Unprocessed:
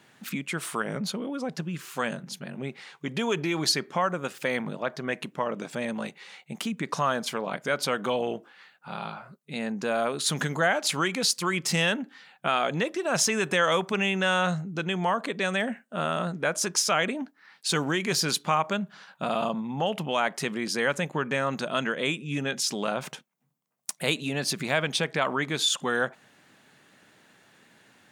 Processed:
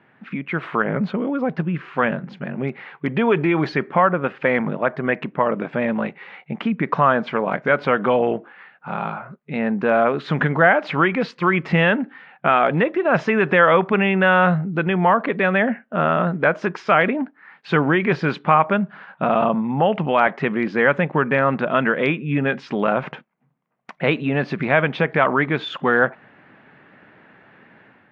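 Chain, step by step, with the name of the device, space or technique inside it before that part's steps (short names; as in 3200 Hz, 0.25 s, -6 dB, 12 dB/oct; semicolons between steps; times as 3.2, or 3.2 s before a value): action camera in a waterproof case (LPF 2300 Hz 24 dB/oct; AGC gain up to 7 dB; gain +3 dB; AAC 64 kbps 32000 Hz)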